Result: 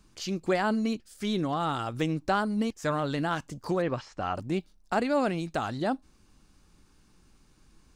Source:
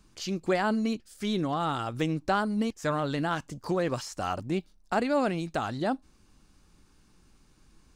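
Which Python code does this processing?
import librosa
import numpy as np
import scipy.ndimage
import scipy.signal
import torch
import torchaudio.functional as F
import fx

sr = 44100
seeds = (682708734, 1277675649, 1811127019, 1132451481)

y = fx.lowpass(x, sr, hz=3000.0, slope=12, at=(3.81, 4.34), fade=0.02)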